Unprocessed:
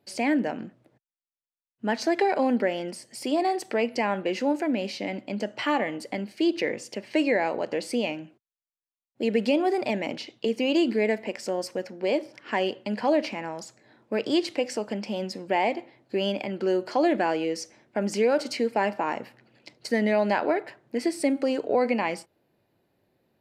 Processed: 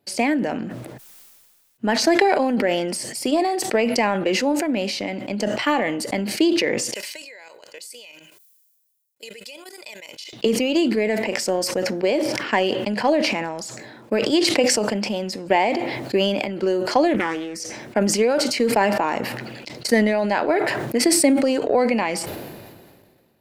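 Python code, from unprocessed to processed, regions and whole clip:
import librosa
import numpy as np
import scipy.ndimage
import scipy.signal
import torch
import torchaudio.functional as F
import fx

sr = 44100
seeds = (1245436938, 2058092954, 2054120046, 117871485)

y = fx.chain(x, sr, fx.pre_emphasis(coefficient=0.97),
    fx.comb(ms=2.0, depth=0.52),
    fx.level_steps(step_db=15), at=(6.94, 10.33))
y = fx.chain(y, sr, fx.fixed_phaser(hz=1500.0, stages=4),
    fx.doppler_dist(depth_ms=0.45), at=(17.14, 17.6))
y = fx.transient(y, sr, attack_db=8, sustain_db=4)
y = fx.high_shelf(y, sr, hz=6800.0, db=7.5)
y = fx.sustainer(y, sr, db_per_s=32.0)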